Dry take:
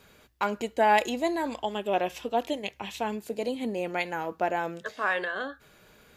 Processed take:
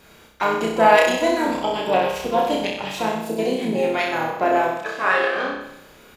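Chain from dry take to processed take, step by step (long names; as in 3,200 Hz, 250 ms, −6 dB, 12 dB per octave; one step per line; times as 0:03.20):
flutter between parallel walls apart 5.4 metres, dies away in 0.81 s
pitch-shifted copies added −5 semitones −9 dB, +7 semitones −13 dB
level +4.5 dB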